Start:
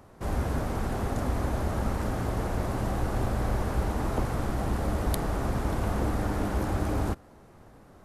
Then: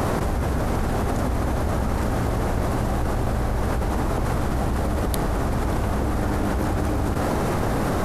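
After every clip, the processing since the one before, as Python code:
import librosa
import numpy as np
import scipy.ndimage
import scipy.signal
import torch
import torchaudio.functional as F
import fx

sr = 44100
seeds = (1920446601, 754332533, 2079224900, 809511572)

y = fx.env_flatten(x, sr, amount_pct=100)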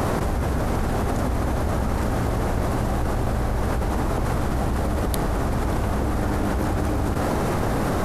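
y = x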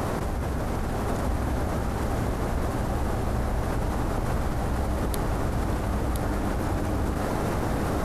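y = x + 10.0 ** (-5.0 / 20.0) * np.pad(x, (int(1016 * sr / 1000.0), 0))[:len(x)]
y = F.gain(torch.from_numpy(y), -5.0).numpy()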